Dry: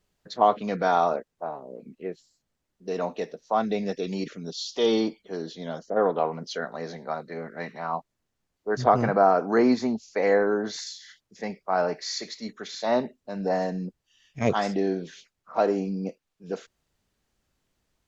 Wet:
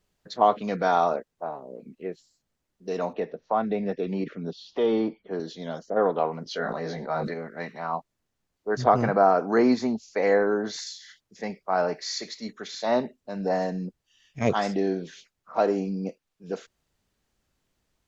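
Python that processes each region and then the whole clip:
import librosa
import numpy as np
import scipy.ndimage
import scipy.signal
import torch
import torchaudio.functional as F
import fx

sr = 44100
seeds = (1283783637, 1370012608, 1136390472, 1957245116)

y = fx.chain(x, sr, fx.lowpass(hz=2100.0, slope=12),
    fx.band_squash(depth_pct=40), at=(3.13, 5.4))
y = fx.chain(y, sr, fx.air_absorb(metres=65.0),
    fx.doubler(ms=19.0, db=-4.5),
    fx.sustainer(db_per_s=27.0), at=(6.44, 7.34))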